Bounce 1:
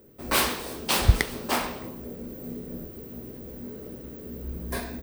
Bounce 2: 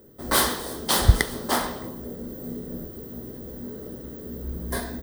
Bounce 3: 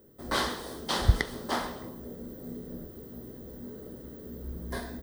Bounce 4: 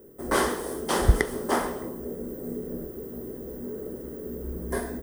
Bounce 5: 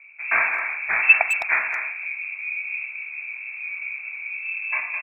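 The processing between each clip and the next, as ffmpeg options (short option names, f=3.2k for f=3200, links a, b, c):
-af "superequalizer=12b=0.282:16b=1.41,volume=2.5dB"
-filter_complex "[0:a]acrossover=split=6300[a][b];[b]acompressor=threshold=-42dB:ratio=4:attack=1:release=60[c];[a][c]amix=inputs=2:normalize=0,volume=-6dB"
-af "equalizer=f=100:t=o:w=0.67:g=-6,equalizer=f=400:t=o:w=0.67:g=7,equalizer=f=4k:t=o:w=0.67:g=-12,equalizer=f=10k:t=o:w=0.67:g=7,volume=4.5dB"
-filter_complex "[0:a]lowpass=f=2.3k:t=q:w=0.5098,lowpass=f=2.3k:t=q:w=0.6013,lowpass=f=2.3k:t=q:w=0.9,lowpass=f=2.3k:t=q:w=2.563,afreqshift=-2700,asplit=2[a][b];[b]adelay=210,highpass=300,lowpass=3.4k,asoftclip=type=hard:threshold=-14dB,volume=-7dB[c];[a][c]amix=inputs=2:normalize=0,volume=3.5dB"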